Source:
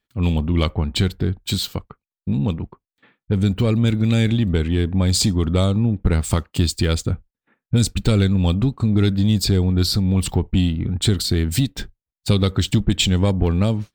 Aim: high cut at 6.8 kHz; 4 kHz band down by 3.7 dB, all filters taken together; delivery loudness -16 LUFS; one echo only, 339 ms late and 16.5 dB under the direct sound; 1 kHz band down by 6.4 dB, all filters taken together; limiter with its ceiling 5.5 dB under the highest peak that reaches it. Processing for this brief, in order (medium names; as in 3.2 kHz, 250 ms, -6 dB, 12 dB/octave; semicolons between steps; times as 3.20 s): low-pass 6.8 kHz; peaking EQ 1 kHz -8.5 dB; peaking EQ 4 kHz -3.5 dB; peak limiter -11 dBFS; delay 339 ms -16.5 dB; trim +5.5 dB